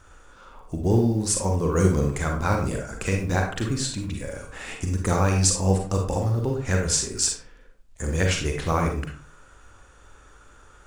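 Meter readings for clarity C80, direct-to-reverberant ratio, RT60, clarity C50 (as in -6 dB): 10.0 dB, 1.5 dB, 0.45 s, 4.5 dB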